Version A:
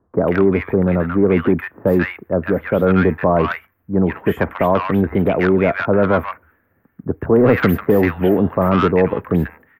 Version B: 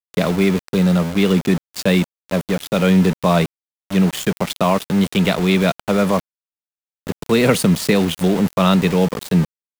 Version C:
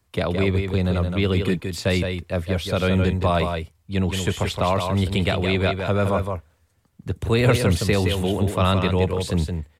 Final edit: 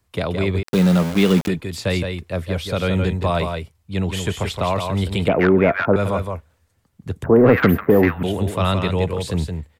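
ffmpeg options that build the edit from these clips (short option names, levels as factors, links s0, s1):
-filter_complex "[0:a]asplit=2[s0][s1];[2:a]asplit=4[s2][s3][s4][s5];[s2]atrim=end=0.632[s6];[1:a]atrim=start=0.628:end=1.482[s7];[s3]atrim=start=1.478:end=5.282[s8];[s0]atrim=start=5.278:end=5.962[s9];[s4]atrim=start=5.958:end=7.242[s10];[s1]atrim=start=7.238:end=8.232[s11];[s5]atrim=start=8.228[s12];[s6][s7]acrossfade=d=0.004:c1=hsin:c2=hsin[s13];[s13][s8]acrossfade=d=0.004:c1=hsin:c2=hsin[s14];[s14][s9]acrossfade=d=0.004:c1=hsin:c2=hsin[s15];[s15][s10]acrossfade=d=0.004:c1=hsin:c2=hsin[s16];[s16][s11]acrossfade=d=0.004:c1=hsin:c2=hsin[s17];[s17][s12]acrossfade=d=0.004:c1=hsin:c2=hsin"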